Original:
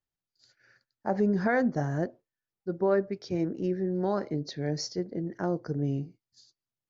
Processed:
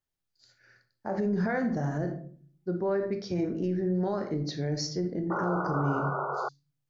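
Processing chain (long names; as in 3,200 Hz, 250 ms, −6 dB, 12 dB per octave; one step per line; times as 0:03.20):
convolution reverb RT60 0.45 s, pre-delay 22 ms, DRR 6 dB
brickwall limiter −22 dBFS, peak gain reduction 8 dB
sound drawn into the spectrogram noise, 0:05.30–0:06.49, 360–1,500 Hz −33 dBFS
level +1 dB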